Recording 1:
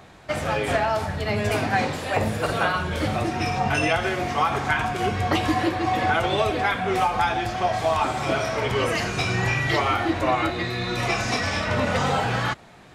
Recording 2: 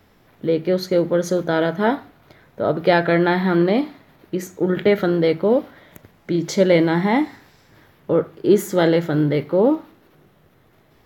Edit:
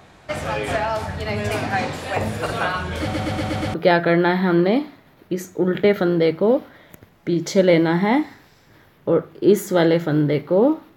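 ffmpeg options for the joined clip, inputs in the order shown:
-filter_complex "[0:a]apad=whole_dur=10.96,atrim=end=10.96,asplit=6[a][b][c][d][e][f];[a]atrim=end=3.142[g];[b]atrim=start=3.018:end=3.142[h];[c]atrim=start=3.018:end=3.142[i];[d]atrim=start=3.018:end=3.142[j];[e]atrim=start=3.018:end=3.142[k];[f]atrim=start=3.018:end=3.142[l];[1:a]atrim=start=2.758:end=9.98[m];[g][h]acrossfade=d=0.004:c1=hsin:c2=hsin[n];[n][i]acrossfade=d=0.004:c1=hsin:c2=hsin[o];[o][j]acrossfade=d=0.004:c1=hsin:c2=hsin[p];[p][k]acrossfade=d=0.004:c1=hsin:c2=hsin[q];[q][l]acrossfade=d=0.004:c1=hsin:c2=hsin[r];[r][m]acrossfade=d=0.004:c1=hsin:c2=hsin"

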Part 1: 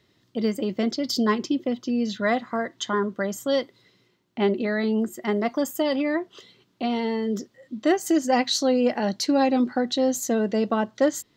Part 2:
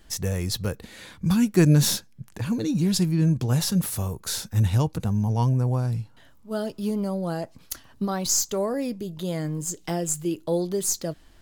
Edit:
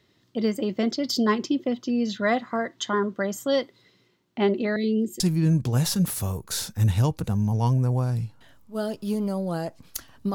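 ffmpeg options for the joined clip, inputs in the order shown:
-filter_complex "[0:a]asettb=1/sr,asplit=3[a][b][c];[a]atrim=end=4.764[d];[b]atrim=start=4.76:end=5.2,asetpts=PTS-STARTPTS,afade=t=in:d=0.004:c=qsin,afade=t=out:st=0.436:d=0.004:c=qsin,asuperstop=centerf=1100:order=8:qfactor=0.62[e];[c]atrim=start=5.196[f];[d][e]acrossfade=d=0.004:c1=hsin:c2=qsin[g];[g][f]acrossfade=d=0.004:c1=qsin:c2=hsin,apad=whole_dur=10.34,atrim=end=10.34,atrim=end=5.202[h];[1:a]atrim=start=2.958:end=8.1[i];[h][i]acrossfade=d=0.004:c1=hsin:c2=hsin"

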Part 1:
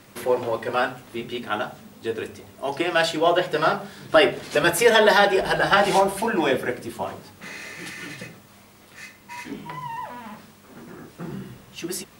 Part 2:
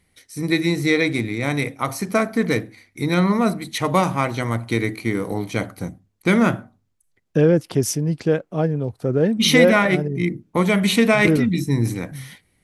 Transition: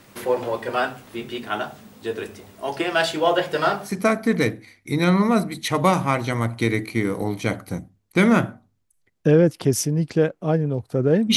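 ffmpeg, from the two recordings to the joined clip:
-filter_complex "[0:a]apad=whole_dur=11.36,atrim=end=11.36,atrim=end=3.94,asetpts=PTS-STARTPTS[a];[1:a]atrim=start=1.92:end=9.46,asetpts=PTS-STARTPTS[b];[a][b]acrossfade=d=0.12:c1=tri:c2=tri"

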